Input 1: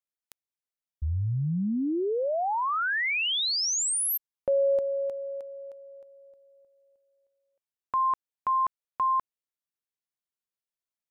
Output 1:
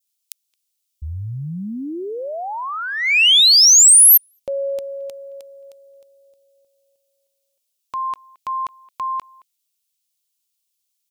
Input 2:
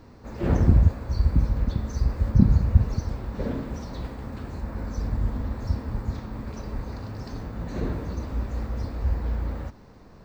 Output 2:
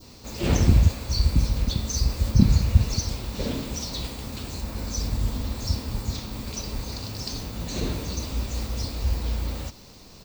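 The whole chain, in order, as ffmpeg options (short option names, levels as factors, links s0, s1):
-filter_complex "[0:a]adynamicequalizer=threshold=0.00891:dfrequency=2100:dqfactor=1.1:tfrequency=2100:tqfactor=1.1:attack=5:release=100:ratio=0.375:range=2:mode=boostabove:tftype=bell,aexciter=amount=4.4:drive=8:freq=2500,asplit=2[s0][s1];[s1]adelay=220,highpass=300,lowpass=3400,asoftclip=type=hard:threshold=0.237,volume=0.0631[s2];[s0][s2]amix=inputs=2:normalize=0"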